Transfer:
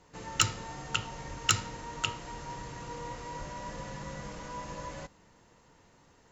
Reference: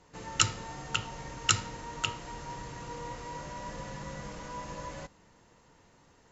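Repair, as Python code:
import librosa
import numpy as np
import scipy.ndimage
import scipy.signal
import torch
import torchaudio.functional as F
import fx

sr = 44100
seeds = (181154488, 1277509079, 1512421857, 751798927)

y = fx.fix_declip(x, sr, threshold_db=-11.0)
y = fx.highpass(y, sr, hz=140.0, slope=24, at=(1.29, 1.41), fade=0.02)
y = fx.highpass(y, sr, hz=140.0, slope=24, at=(3.38, 3.5), fade=0.02)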